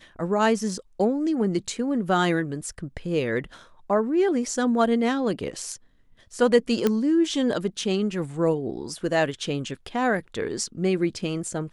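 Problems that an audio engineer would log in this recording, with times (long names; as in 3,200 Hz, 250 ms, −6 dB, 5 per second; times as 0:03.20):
0:06.87: click −9 dBFS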